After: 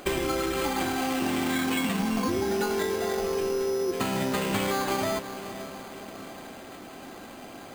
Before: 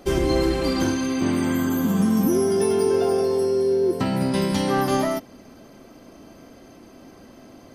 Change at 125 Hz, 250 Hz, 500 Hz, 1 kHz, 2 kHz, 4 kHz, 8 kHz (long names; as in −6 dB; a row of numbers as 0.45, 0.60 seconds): −9.0, −7.5, −7.0, −1.5, +1.0, −0.5, −1.5 decibels